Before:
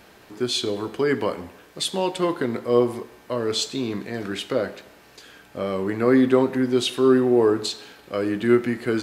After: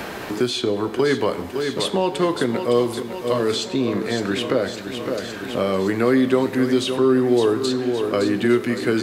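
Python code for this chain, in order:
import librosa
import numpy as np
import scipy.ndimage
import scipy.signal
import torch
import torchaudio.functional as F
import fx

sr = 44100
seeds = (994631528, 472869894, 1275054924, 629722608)

y = fx.echo_feedback(x, sr, ms=561, feedback_pct=54, wet_db=-11.5)
y = fx.band_squash(y, sr, depth_pct=70)
y = y * librosa.db_to_amplitude(2.0)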